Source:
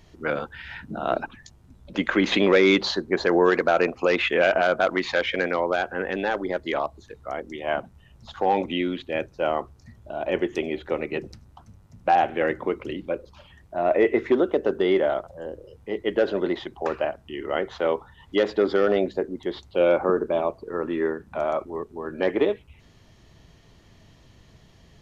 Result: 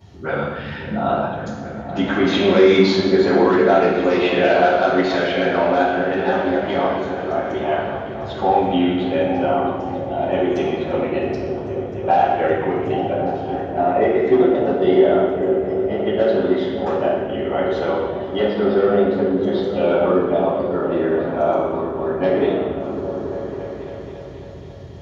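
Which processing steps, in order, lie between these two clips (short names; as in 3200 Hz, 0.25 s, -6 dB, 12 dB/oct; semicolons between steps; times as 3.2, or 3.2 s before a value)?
17.89–19.69 treble ducked by the level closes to 2900 Hz, closed at -17 dBFS; flange 0.36 Hz, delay 9.4 ms, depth 9.4 ms, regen -85%; in parallel at +1.5 dB: compressor, threshold -33 dBFS, peak gain reduction 14.5 dB; on the sum: high shelf 4900 Hz +6.5 dB; repeats that get brighter 0.275 s, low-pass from 200 Hz, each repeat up 1 oct, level -3 dB; reverb RT60 1.1 s, pre-delay 3 ms, DRR -13 dB; gain -12.5 dB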